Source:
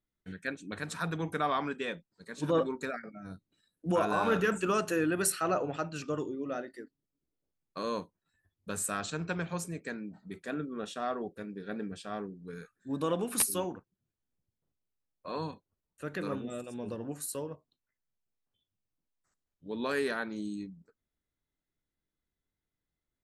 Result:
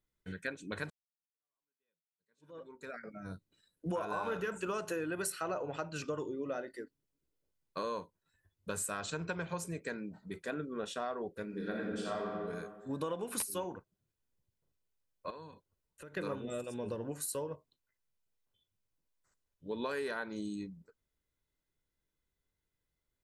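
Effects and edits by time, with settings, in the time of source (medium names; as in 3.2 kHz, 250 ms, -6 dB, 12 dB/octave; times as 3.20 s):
0.90–3.12 s: fade in exponential
11.46–12.24 s: reverb throw, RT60 1.6 s, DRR -2.5 dB
15.30–16.17 s: compression 5:1, threshold -49 dBFS
whole clip: comb 2 ms, depth 30%; dynamic bell 830 Hz, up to +4 dB, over -42 dBFS, Q 1.6; compression 6:1, threshold -35 dBFS; trim +1 dB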